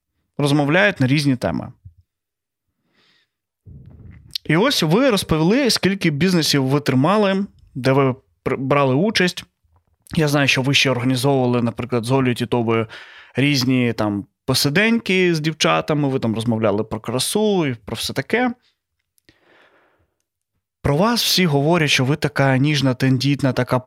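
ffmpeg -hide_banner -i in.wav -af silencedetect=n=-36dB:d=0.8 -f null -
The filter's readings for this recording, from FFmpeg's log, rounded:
silence_start: 1.87
silence_end: 3.67 | silence_duration: 1.80
silence_start: 19.29
silence_end: 20.84 | silence_duration: 1.56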